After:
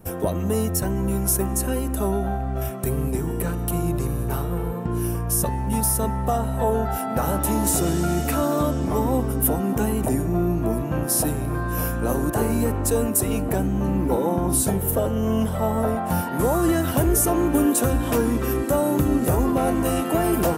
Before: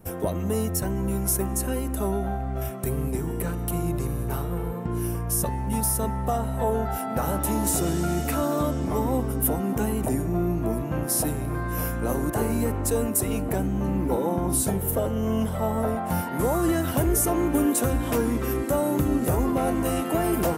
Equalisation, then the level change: notch 2100 Hz, Q 23; +3.0 dB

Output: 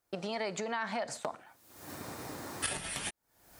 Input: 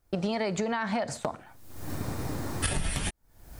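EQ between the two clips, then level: HPF 490 Hz 6 dB/oct; -3.0 dB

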